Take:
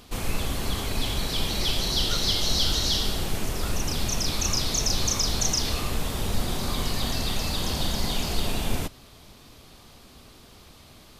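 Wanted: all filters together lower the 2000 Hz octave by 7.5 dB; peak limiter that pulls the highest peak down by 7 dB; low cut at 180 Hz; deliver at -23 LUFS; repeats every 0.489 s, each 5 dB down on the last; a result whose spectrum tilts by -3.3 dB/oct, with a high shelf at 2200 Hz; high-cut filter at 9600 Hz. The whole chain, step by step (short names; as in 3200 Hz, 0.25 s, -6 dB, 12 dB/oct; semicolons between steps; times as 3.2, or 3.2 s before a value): HPF 180 Hz; LPF 9600 Hz; bell 2000 Hz -6 dB; high shelf 2200 Hz -6.5 dB; limiter -24 dBFS; feedback echo 0.489 s, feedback 56%, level -5 dB; gain +9 dB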